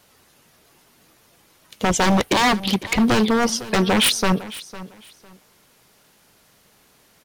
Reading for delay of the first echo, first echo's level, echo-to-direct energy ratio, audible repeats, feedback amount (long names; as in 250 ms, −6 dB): 504 ms, −17.0 dB, −17.0 dB, 2, 23%